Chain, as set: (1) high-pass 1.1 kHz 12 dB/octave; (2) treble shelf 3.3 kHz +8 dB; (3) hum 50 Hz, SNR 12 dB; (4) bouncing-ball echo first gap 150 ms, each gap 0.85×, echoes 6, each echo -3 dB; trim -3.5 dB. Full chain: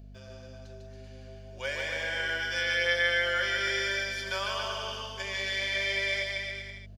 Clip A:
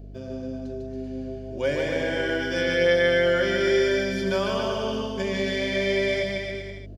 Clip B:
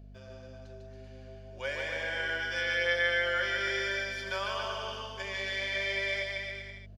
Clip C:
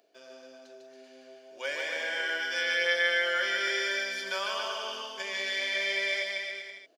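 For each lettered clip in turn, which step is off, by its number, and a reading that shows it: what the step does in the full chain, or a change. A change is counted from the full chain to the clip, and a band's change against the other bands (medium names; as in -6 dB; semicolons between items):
1, 250 Hz band +18.5 dB; 2, 8 kHz band -5.0 dB; 3, 250 Hz band -2.0 dB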